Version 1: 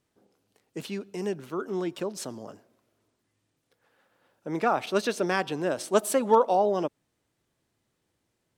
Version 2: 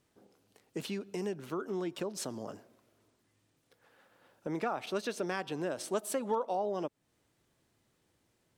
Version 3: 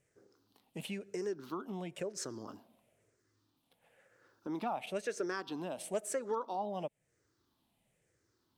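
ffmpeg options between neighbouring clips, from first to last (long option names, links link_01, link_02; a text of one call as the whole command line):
ffmpeg -i in.wav -af "acompressor=threshold=-39dB:ratio=2.5,volume=2.5dB" out.wav
ffmpeg -i in.wav -af "afftfilt=real='re*pow(10,12/40*sin(2*PI*(0.51*log(max(b,1)*sr/1024/100)/log(2)-(-1)*(pts-256)/sr)))':imag='im*pow(10,12/40*sin(2*PI*(0.51*log(max(b,1)*sr/1024/100)/log(2)-(-1)*(pts-256)/sr)))':win_size=1024:overlap=0.75,asoftclip=type=hard:threshold=-20dB,volume=-5dB" out.wav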